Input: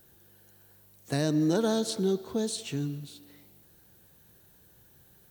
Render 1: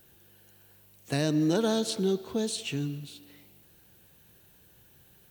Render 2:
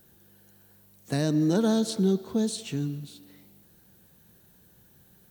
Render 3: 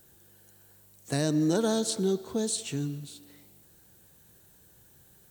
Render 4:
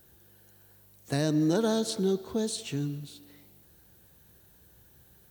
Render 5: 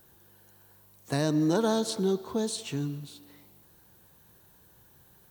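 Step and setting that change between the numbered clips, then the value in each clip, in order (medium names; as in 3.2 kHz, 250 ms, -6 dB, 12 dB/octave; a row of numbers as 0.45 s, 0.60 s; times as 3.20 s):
peaking EQ, frequency: 2.7 kHz, 200 Hz, 7.9 kHz, 63 Hz, 1 kHz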